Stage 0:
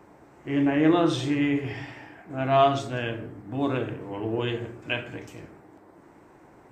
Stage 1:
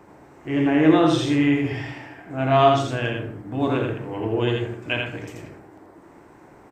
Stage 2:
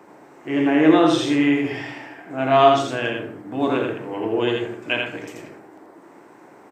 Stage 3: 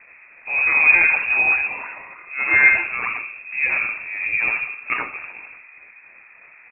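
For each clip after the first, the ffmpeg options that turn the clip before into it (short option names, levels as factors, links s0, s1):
-af "aecho=1:1:83:0.668,volume=1.41"
-af "highpass=220,volume=1.33"
-af "acrusher=samples=11:mix=1:aa=0.000001:lfo=1:lforange=6.6:lforate=3.3,lowpass=f=2400:t=q:w=0.5098,lowpass=f=2400:t=q:w=0.6013,lowpass=f=2400:t=q:w=0.9,lowpass=f=2400:t=q:w=2.563,afreqshift=-2800"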